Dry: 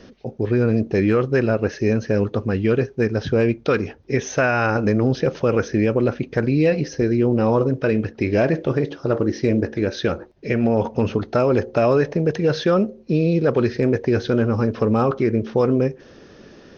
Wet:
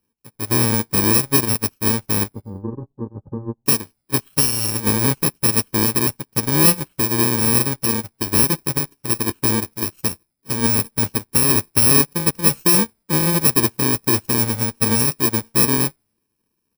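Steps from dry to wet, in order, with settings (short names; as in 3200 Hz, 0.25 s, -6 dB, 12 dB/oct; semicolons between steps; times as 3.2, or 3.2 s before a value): FFT order left unsorted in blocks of 64 samples; 2.33–3.66 Bessel low-pass 630 Hz, order 8; on a send: frequency-shifting echo 87 ms, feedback 58%, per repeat -120 Hz, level -22.5 dB; on the sum: upward expander 2.5:1, over -37 dBFS; gain +4.5 dB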